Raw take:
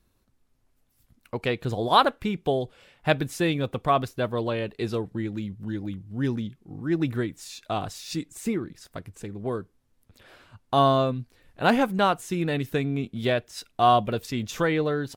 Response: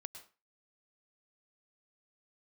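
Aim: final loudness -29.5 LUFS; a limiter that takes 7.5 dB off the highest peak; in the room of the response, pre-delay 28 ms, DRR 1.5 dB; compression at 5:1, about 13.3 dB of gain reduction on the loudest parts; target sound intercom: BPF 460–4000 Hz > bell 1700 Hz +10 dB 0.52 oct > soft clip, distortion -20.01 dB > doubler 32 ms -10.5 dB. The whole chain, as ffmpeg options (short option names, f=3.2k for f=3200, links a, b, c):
-filter_complex "[0:a]acompressor=threshold=-29dB:ratio=5,alimiter=level_in=0.5dB:limit=-24dB:level=0:latency=1,volume=-0.5dB,asplit=2[a][b];[1:a]atrim=start_sample=2205,adelay=28[c];[b][c]afir=irnorm=-1:irlink=0,volume=3dB[d];[a][d]amix=inputs=2:normalize=0,highpass=460,lowpass=4k,equalizer=f=1.7k:t=o:w=0.52:g=10,asoftclip=threshold=-24dB,asplit=2[e][f];[f]adelay=32,volume=-10.5dB[g];[e][g]amix=inputs=2:normalize=0,volume=7.5dB"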